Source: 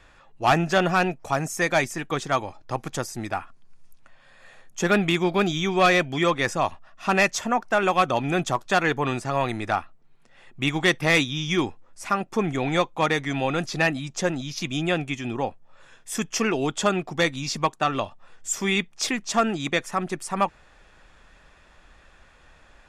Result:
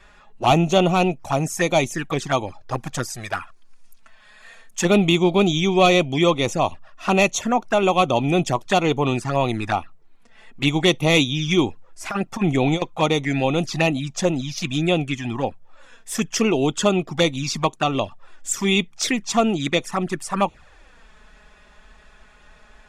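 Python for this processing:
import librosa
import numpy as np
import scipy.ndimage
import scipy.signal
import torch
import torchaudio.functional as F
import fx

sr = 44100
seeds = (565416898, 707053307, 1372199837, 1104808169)

y = fx.tilt_shelf(x, sr, db=-4.0, hz=970.0, at=(3.1, 4.85))
y = fx.over_compress(y, sr, threshold_db=-24.0, ratio=-0.5, at=(12.04, 12.82))
y = fx.env_flanger(y, sr, rest_ms=5.3, full_db=-21.0)
y = y * 10.0 ** (6.0 / 20.0)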